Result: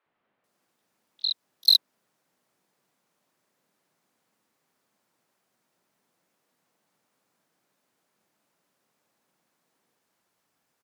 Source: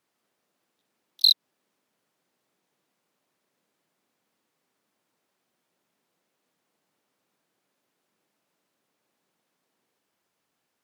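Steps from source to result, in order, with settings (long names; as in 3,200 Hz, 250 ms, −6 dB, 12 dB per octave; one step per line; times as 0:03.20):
three-band delay without the direct sound mids, lows, highs 60/440 ms, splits 360/3,100 Hz
level +3 dB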